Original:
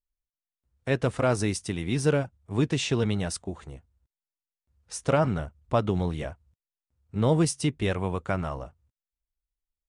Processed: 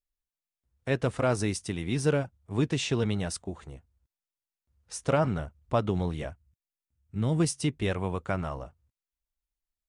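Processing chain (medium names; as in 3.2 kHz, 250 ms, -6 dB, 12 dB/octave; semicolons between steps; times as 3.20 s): 6.30–7.40 s: graphic EQ 500/1000/4000 Hz -8/-7/-5 dB; trim -2 dB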